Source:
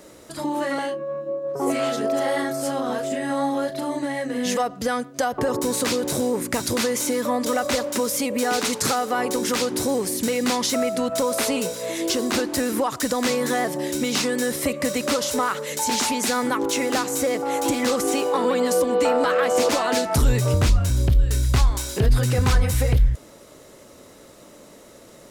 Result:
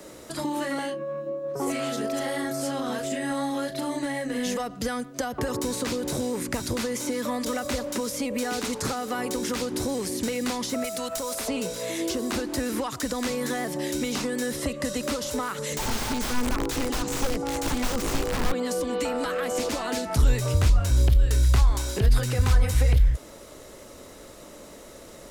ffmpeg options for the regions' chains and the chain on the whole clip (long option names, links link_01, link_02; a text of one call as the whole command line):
ffmpeg -i in.wav -filter_complex "[0:a]asettb=1/sr,asplit=3[link_01][link_02][link_03];[link_01]atrim=end=10.844[link_04];[link_02]atrim=start=10.84:end=11.48,asetpts=PTS-STARTPTS,afade=type=in:duration=0.004:curve=qsin,afade=type=out:start_time=0.636:duration=0.004:curve=qsin,aemphasis=mode=production:type=75kf,acrossover=split=120|510[link_05][link_06][link_07];[link_05]acompressor=threshold=-59dB:ratio=4[link_08];[link_06]acompressor=threshold=-39dB:ratio=4[link_09];[link_07]acompressor=threshold=-19dB:ratio=4[link_10];[link_08][link_09][link_10]amix=inputs=3:normalize=0,asoftclip=type=hard:threshold=-17.5dB[link_11];[link_03]atrim=start=11.476[link_12];[link_04][link_11]acrossfade=duration=0.004:curve1=hsin:curve2=qsin[link_13];[link_13][link_12]acrossfade=duration=0.004:curve1=qsin:curve2=hsin,asettb=1/sr,asplit=3[link_14][link_15][link_16];[link_14]atrim=end=14.574[link_17];[link_15]atrim=start=14.57:end=15.03,asetpts=PTS-STARTPTS,afade=type=in:duration=0.004:curve=qsin,afade=type=out:start_time=0.456:duration=0.004:curve=qsin,lowpass=12000,bandreject=frequency=2300:width=6[link_18];[link_16]atrim=start=15.026[link_19];[link_17][link_18]acrossfade=duration=0.004:curve1=hsin:curve2=qsin[link_20];[link_20][link_19]acrossfade=duration=0.004:curve1=qsin:curve2=hsin,asettb=1/sr,asplit=3[link_21][link_22][link_23];[link_21]atrim=end=15.584[link_24];[link_22]atrim=start=15.58:end=18.52,asetpts=PTS-STARTPTS,afade=type=in:duration=0.004:curve=qsin,afade=type=out:start_time=2.936:duration=0.004:curve=qsin,lowpass=10000,bass=frequency=250:gain=7,treble=frequency=4000:gain=8,aeval=exprs='(mod(5.62*val(0)+1,2)-1)/5.62':channel_layout=same[link_25];[link_23]atrim=start=18.516[link_26];[link_24][link_25]acrossfade=duration=0.004:curve1=hsin:curve2=qsin[link_27];[link_27][link_26]acrossfade=duration=0.004:curve1=qsin:curve2=hsin,asubboost=boost=2.5:cutoff=72,acrossover=split=93|310|1500|7700[link_28][link_29][link_30][link_31][link_32];[link_28]acompressor=threshold=-20dB:ratio=4[link_33];[link_29]acompressor=threshold=-33dB:ratio=4[link_34];[link_30]acompressor=threshold=-35dB:ratio=4[link_35];[link_31]acompressor=threshold=-38dB:ratio=4[link_36];[link_32]acompressor=threshold=-44dB:ratio=4[link_37];[link_33][link_34][link_35][link_36][link_37]amix=inputs=5:normalize=0,volume=2dB" out.wav